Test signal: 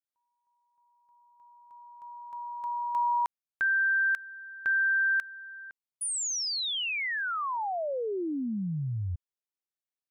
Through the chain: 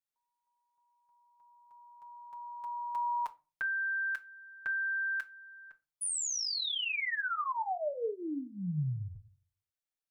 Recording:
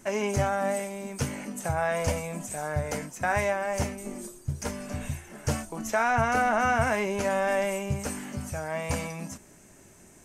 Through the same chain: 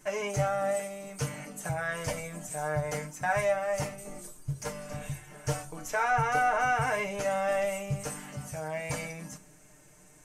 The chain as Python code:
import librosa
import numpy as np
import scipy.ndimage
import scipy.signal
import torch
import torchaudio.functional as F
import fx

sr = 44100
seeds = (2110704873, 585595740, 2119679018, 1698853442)

y = fx.peak_eq(x, sr, hz=270.0, db=-4.5, octaves=1.4)
y = y + 0.78 * np.pad(y, (int(6.6 * sr / 1000.0), 0))[:len(y)]
y = fx.room_shoebox(y, sr, seeds[0], volume_m3=130.0, walls='furnished', distance_m=0.42)
y = y * librosa.db_to_amplitude(-5.0)